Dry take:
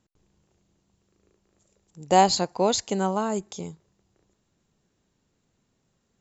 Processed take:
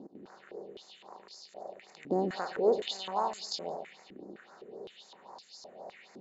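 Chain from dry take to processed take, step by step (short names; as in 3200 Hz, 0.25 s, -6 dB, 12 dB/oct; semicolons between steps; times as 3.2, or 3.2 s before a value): per-bin compression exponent 0.4; 2.39–3.65 transient shaper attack -6 dB, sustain +7 dB; split-band echo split 930 Hz, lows 0.125 s, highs 0.171 s, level -9 dB; phaser stages 4, 3.8 Hz, lowest notch 790–3100 Hz; stepped band-pass 3.9 Hz 290–4900 Hz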